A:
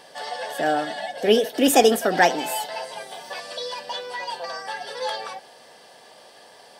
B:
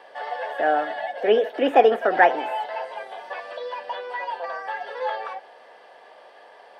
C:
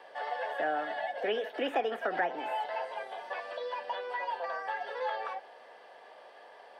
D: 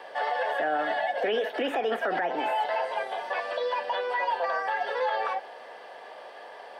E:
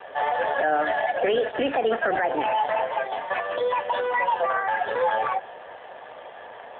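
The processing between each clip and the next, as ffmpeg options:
-filter_complex "[0:a]acrossover=split=3300[s0][s1];[s1]acompressor=threshold=0.00794:ratio=4:attack=1:release=60[s2];[s0][s2]amix=inputs=2:normalize=0,acrossover=split=350 2700:gain=0.1 1 0.0794[s3][s4][s5];[s3][s4][s5]amix=inputs=3:normalize=0,volume=1.33"
-filter_complex "[0:a]acrossover=split=240|890[s0][s1][s2];[s0]acompressor=threshold=0.00794:ratio=4[s3];[s1]acompressor=threshold=0.0316:ratio=4[s4];[s2]acompressor=threshold=0.0355:ratio=4[s5];[s3][s4][s5]amix=inputs=3:normalize=0,volume=0.596"
-af "alimiter=level_in=1.5:limit=0.0631:level=0:latency=1:release=42,volume=0.668,volume=2.66"
-af "volume=1.88" -ar 8000 -c:a libopencore_amrnb -b:a 7400

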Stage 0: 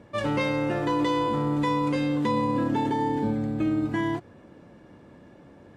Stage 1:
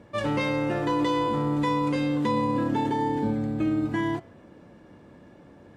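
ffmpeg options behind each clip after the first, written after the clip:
-af "bandreject=f=133.3:t=h:w=4,bandreject=f=266.6:t=h:w=4,bandreject=f=399.9:t=h:w=4,bandreject=f=533.2:t=h:w=4,bandreject=f=666.5:t=h:w=4,bandreject=f=799.8:t=h:w=4,bandreject=f=933.1:t=h:w=4,bandreject=f=1066.4:t=h:w=4,bandreject=f=1199.7:t=h:w=4,bandreject=f=1333:t=h:w=4,bandreject=f=1466.3:t=h:w=4,bandreject=f=1599.6:t=h:w=4,bandreject=f=1732.9:t=h:w=4,bandreject=f=1866.2:t=h:w=4,bandreject=f=1999.5:t=h:w=4,bandreject=f=2132.8:t=h:w=4,bandreject=f=2266.1:t=h:w=4,bandreject=f=2399.4:t=h:w=4,bandreject=f=2532.7:t=h:w=4,bandreject=f=2666:t=h:w=4,bandreject=f=2799.3:t=h:w=4,bandreject=f=2932.6:t=h:w=4,bandreject=f=3065.9:t=h:w=4,bandreject=f=3199.2:t=h:w=4,bandreject=f=3332.5:t=h:w=4,bandreject=f=3465.8:t=h:w=4,bandreject=f=3599.1:t=h:w=4"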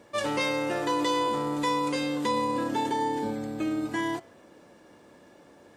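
-af "bass=f=250:g=-12,treble=f=4000:g=10"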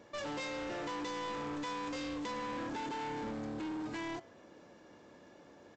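-af "alimiter=limit=0.0841:level=0:latency=1:release=403,aresample=16000,asoftclip=type=hard:threshold=0.02,aresample=44100,volume=0.668"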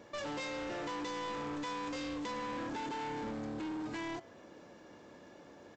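-af "acompressor=threshold=0.00562:ratio=1.5,volume=1.33"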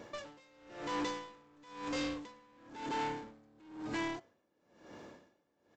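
-af "aeval=exprs='val(0)*pow(10,-29*(0.5-0.5*cos(2*PI*1*n/s))/20)':c=same,volume=1.68"

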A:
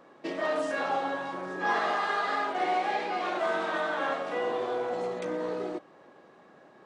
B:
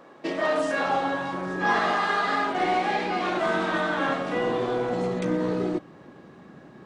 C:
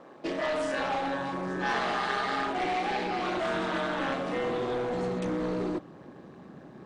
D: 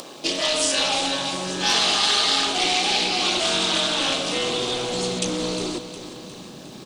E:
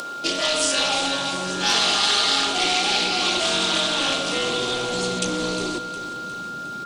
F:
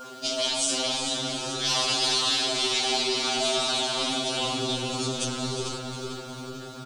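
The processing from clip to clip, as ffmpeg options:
-af "asubboost=boost=5.5:cutoff=240,volume=1.88"
-filter_complex "[0:a]acrossover=split=1600[s0][s1];[s0]asoftclip=type=tanh:threshold=0.0473[s2];[s1]aeval=exprs='val(0)*sin(2*PI*130*n/s)':c=same[s3];[s2][s3]amix=inputs=2:normalize=0"
-af "acompressor=mode=upward:threshold=0.0126:ratio=2.5,aexciter=amount=6.2:drive=8.3:freq=2700,aecho=1:1:358|716|1074|1432|1790|2148:0.251|0.133|0.0706|0.0374|0.0198|0.0105,volume=1.41"
-af "aeval=exprs='val(0)+0.0316*sin(2*PI*1400*n/s)':c=same"
-filter_complex "[0:a]adynamicequalizer=threshold=0.0178:dfrequency=2100:dqfactor=0.85:tfrequency=2100:tqfactor=0.85:attack=5:release=100:ratio=0.375:range=3.5:mode=cutabove:tftype=bell,asplit=2[s0][s1];[s1]adelay=444,lowpass=f=4000:p=1,volume=0.596,asplit=2[s2][s3];[s3]adelay=444,lowpass=f=4000:p=1,volume=0.55,asplit=2[s4][s5];[s5]adelay=444,lowpass=f=4000:p=1,volume=0.55,asplit=2[s6][s7];[s7]adelay=444,lowpass=f=4000:p=1,volume=0.55,asplit=2[s8][s9];[s9]adelay=444,lowpass=f=4000:p=1,volume=0.55,asplit=2[s10][s11];[s11]adelay=444,lowpass=f=4000:p=1,volume=0.55,asplit=2[s12][s13];[s13]adelay=444,lowpass=f=4000:p=1,volume=0.55[s14];[s0][s2][s4][s6][s8][s10][s12][s14]amix=inputs=8:normalize=0,afftfilt=real='re*2.45*eq(mod(b,6),0)':imag='im*2.45*eq(mod(b,6),0)':win_size=2048:overlap=0.75"

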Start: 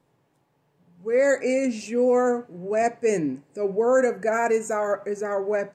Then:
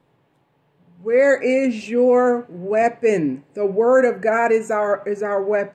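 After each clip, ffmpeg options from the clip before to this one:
-af "highshelf=f=4400:t=q:w=1.5:g=-7,volume=1.78"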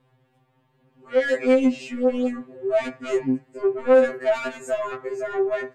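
-af "asoftclip=type=tanh:threshold=0.178,afftfilt=real='re*2.45*eq(mod(b,6),0)':imag='im*2.45*eq(mod(b,6),0)':win_size=2048:overlap=0.75"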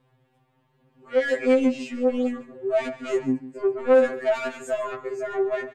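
-af "aecho=1:1:145:0.168,volume=0.841"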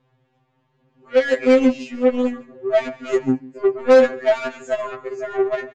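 -af "aresample=16000,aresample=44100,aeval=exprs='0.299*(cos(1*acos(clip(val(0)/0.299,-1,1)))-cos(1*PI/2))+0.0188*(cos(7*acos(clip(val(0)/0.299,-1,1)))-cos(7*PI/2))':c=same,volume=1.88"

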